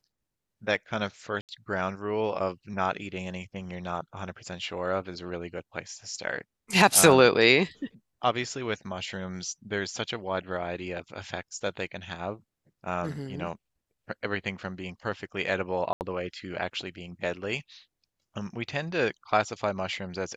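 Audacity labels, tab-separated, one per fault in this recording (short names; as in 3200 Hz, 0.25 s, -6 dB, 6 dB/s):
1.410000	1.490000	gap 78 ms
15.930000	16.010000	gap 79 ms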